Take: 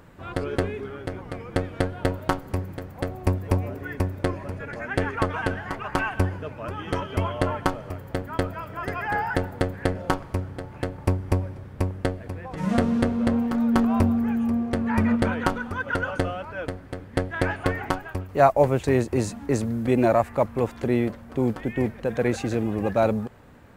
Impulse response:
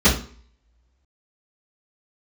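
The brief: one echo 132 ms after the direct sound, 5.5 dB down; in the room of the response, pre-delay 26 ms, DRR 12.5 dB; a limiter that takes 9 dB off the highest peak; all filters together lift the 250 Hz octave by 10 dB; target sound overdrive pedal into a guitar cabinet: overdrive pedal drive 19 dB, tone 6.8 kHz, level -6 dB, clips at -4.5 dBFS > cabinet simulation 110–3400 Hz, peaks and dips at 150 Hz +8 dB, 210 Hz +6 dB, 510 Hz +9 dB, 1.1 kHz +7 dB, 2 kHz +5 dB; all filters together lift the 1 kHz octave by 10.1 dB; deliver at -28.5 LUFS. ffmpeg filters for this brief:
-filter_complex "[0:a]equalizer=f=250:t=o:g=6.5,equalizer=f=1000:t=o:g=8,alimiter=limit=0.376:level=0:latency=1,aecho=1:1:132:0.531,asplit=2[s0][s1];[1:a]atrim=start_sample=2205,adelay=26[s2];[s1][s2]afir=irnorm=-1:irlink=0,volume=0.0211[s3];[s0][s3]amix=inputs=2:normalize=0,asplit=2[s4][s5];[s5]highpass=f=720:p=1,volume=8.91,asoftclip=type=tanh:threshold=0.596[s6];[s4][s6]amix=inputs=2:normalize=0,lowpass=f=6800:p=1,volume=0.501,highpass=110,equalizer=f=150:t=q:w=4:g=8,equalizer=f=210:t=q:w=4:g=6,equalizer=f=510:t=q:w=4:g=9,equalizer=f=1100:t=q:w=4:g=7,equalizer=f=2000:t=q:w=4:g=5,lowpass=f=3400:w=0.5412,lowpass=f=3400:w=1.3066,volume=0.15"

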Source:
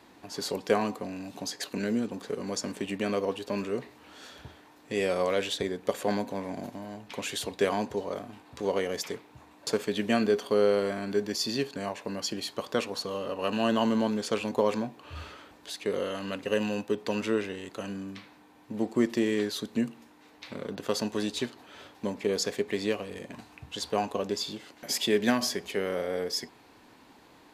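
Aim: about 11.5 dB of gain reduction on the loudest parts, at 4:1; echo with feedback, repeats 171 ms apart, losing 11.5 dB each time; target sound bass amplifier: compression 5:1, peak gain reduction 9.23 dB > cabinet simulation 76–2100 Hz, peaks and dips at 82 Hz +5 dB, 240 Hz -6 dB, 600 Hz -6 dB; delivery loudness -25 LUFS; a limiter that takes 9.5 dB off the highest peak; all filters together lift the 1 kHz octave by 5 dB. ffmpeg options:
-af "equalizer=f=1000:t=o:g=7.5,acompressor=threshold=0.0251:ratio=4,alimiter=level_in=1.19:limit=0.0631:level=0:latency=1,volume=0.841,aecho=1:1:171|342|513:0.266|0.0718|0.0194,acompressor=threshold=0.01:ratio=5,highpass=f=76:w=0.5412,highpass=f=76:w=1.3066,equalizer=f=82:t=q:w=4:g=5,equalizer=f=240:t=q:w=4:g=-6,equalizer=f=600:t=q:w=4:g=-6,lowpass=f=2100:w=0.5412,lowpass=f=2100:w=1.3066,volume=12.6"

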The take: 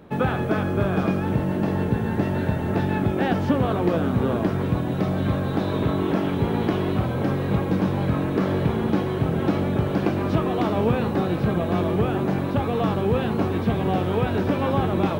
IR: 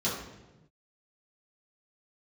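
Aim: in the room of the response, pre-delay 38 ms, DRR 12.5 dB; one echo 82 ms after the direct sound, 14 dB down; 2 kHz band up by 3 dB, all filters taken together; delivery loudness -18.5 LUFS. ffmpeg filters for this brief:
-filter_complex "[0:a]equalizer=f=2000:t=o:g=4,aecho=1:1:82:0.2,asplit=2[s0][s1];[1:a]atrim=start_sample=2205,adelay=38[s2];[s1][s2]afir=irnorm=-1:irlink=0,volume=0.0841[s3];[s0][s3]amix=inputs=2:normalize=0,volume=1.58"

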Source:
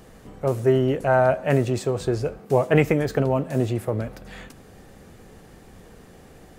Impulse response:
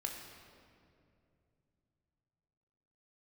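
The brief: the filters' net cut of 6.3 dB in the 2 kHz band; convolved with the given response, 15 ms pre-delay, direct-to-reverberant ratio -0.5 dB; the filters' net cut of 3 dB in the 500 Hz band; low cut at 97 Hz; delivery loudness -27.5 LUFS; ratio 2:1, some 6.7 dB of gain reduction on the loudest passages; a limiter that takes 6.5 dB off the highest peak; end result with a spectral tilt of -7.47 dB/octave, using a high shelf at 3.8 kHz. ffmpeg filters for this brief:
-filter_complex "[0:a]highpass=97,equalizer=f=500:t=o:g=-3.5,equalizer=f=2000:t=o:g=-9,highshelf=f=3800:g=3,acompressor=threshold=0.0398:ratio=2,alimiter=limit=0.0944:level=0:latency=1,asplit=2[s0][s1];[1:a]atrim=start_sample=2205,adelay=15[s2];[s1][s2]afir=irnorm=-1:irlink=0,volume=1.06[s3];[s0][s3]amix=inputs=2:normalize=0,volume=1.06"

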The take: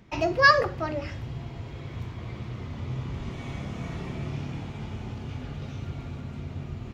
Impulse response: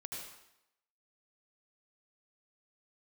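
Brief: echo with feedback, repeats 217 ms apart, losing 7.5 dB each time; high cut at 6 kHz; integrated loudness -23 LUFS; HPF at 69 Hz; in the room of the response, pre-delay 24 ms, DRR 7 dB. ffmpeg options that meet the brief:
-filter_complex "[0:a]highpass=69,lowpass=6000,aecho=1:1:217|434|651|868|1085:0.422|0.177|0.0744|0.0312|0.0131,asplit=2[s0][s1];[1:a]atrim=start_sample=2205,adelay=24[s2];[s1][s2]afir=irnorm=-1:irlink=0,volume=0.531[s3];[s0][s3]amix=inputs=2:normalize=0,volume=1.78"

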